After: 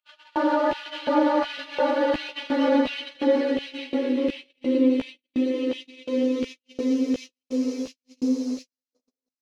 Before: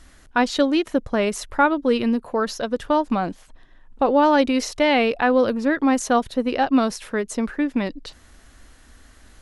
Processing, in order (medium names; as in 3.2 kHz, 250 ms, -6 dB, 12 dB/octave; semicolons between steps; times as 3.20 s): local Wiener filter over 25 samples; Chebyshev high-pass 250 Hz, order 8; Paulstretch 24×, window 0.25 s, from 4.30 s; peak limiter -13.5 dBFS, peak gain reduction 8 dB; LFO high-pass square 1.4 Hz 350–2700 Hz; filtered feedback delay 503 ms, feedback 35%, low-pass 2 kHz, level -19.5 dB; chorus voices 4, 0.32 Hz, delay 14 ms, depth 2.4 ms; gate -34 dBFS, range -55 dB